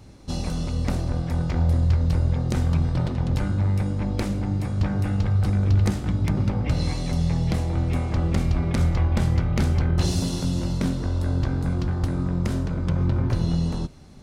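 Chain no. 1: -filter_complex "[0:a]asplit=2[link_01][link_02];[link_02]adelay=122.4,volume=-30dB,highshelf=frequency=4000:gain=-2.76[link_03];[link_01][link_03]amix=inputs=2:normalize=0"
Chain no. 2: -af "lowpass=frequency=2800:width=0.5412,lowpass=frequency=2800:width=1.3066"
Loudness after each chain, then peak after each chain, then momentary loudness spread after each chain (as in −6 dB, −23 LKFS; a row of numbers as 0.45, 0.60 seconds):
−24.0, −24.0 LKFS; −10.5, −11.0 dBFS; 5, 5 LU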